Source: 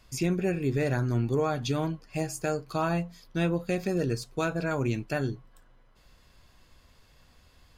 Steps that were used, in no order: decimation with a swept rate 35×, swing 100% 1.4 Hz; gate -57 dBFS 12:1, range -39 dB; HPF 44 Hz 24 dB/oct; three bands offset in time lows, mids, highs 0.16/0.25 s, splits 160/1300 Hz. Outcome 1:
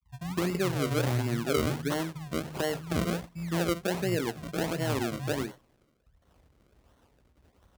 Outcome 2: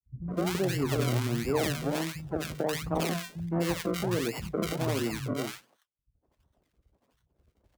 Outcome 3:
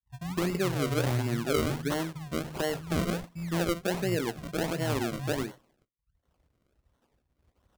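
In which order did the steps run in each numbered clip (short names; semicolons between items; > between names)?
gate > three bands offset in time > decimation with a swept rate > HPF; decimation with a swept rate > HPF > gate > three bands offset in time; HPF > gate > three bands offset in time > decimation with a swept rate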